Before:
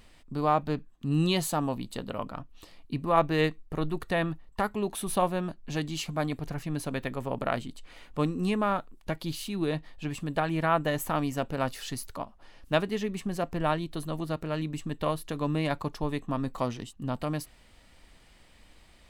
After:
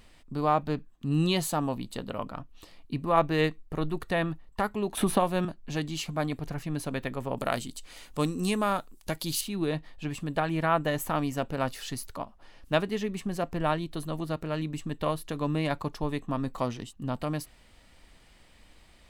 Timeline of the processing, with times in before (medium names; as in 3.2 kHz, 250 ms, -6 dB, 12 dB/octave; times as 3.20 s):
4.97–5.45 s: three bands compressed up and down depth 100%
7.37–9.41 s: tone controls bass -1 dB, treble +13 dB